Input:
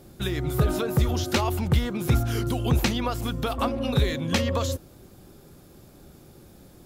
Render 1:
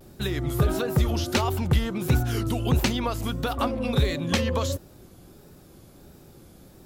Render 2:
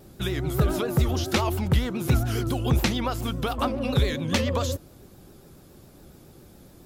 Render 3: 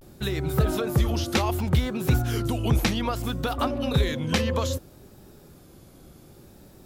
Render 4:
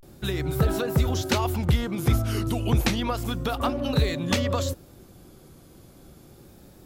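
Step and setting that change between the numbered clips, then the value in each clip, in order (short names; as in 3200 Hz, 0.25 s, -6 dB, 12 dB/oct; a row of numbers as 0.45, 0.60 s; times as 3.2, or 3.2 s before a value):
vibrato, rate: 1.5, 7.2, 0.63, 0.31 Hz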